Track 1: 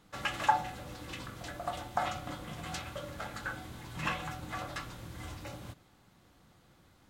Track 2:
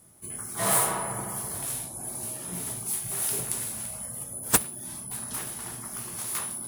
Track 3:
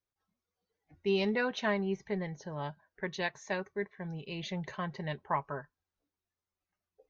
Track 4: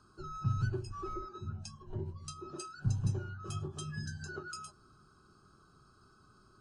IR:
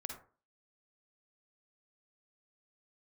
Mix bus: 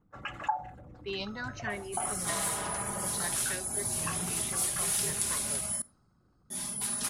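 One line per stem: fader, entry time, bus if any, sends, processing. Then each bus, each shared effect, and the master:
-5.0 dB, 0.00 s, no send, resonances exaggerated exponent 2; peaking EQ 3.7 kHz -13 dB 1 oct
-3.0 dB, 1.70 s, muted 5.82–6.50 s, send -14.5 dB, low-pass 7.8 kHz 12 dB/octave; comb 4.9 ms; compression 10:1, threshold -32 dBFS, peak gain reduction 15.5 dB
-7.0 dB, 0.00 s, send -12 dB, barber-pole phaser +1.1 Hz
-14.5 dB, 1.00 s, no send, none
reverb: on, RT60 0.40 s, pre-delay 42 ms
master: treble shelf 2.1 kHz +9.5 dB; tape noise reduction on one side only decoder only

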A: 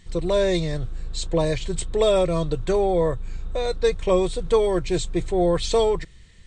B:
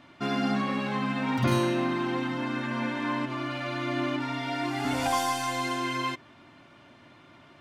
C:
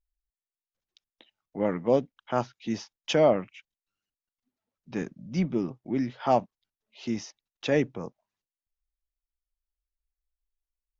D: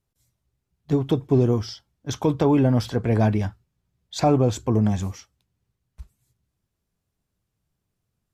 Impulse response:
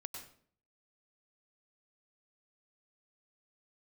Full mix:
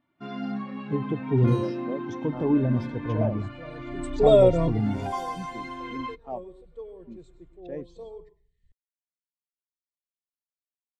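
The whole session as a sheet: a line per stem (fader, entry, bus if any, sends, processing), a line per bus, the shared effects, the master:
-0.5 dB, 2.25 s, send -16.5 dB, auto duck -23 dB, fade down 0.20 s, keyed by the third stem
-0.5 dB, 0.00 s, no send, de-hum 275.9 Hz, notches 34
-8.0 dB, 0.00 s, no send, local Wiener filter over 25 samples
-7.0 dB, 0.00 s, send -7.5 dB, none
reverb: on, RT60 0.55 s, pre-delay 92 ms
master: spectral contrast expander 1.5:1

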